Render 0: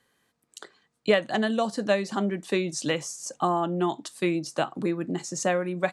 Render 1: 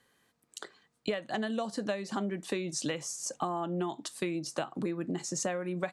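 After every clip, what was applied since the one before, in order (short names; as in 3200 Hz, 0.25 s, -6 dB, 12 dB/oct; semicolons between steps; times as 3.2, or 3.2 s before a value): compressor 6:1, threshold -30 dBFS, peak gain reduction 14 dB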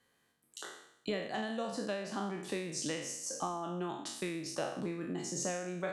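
spectral trails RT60 0.76 s; gain -6 dB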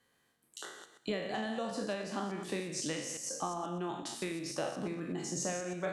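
reverse delay 0.122 s, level -8.5 dB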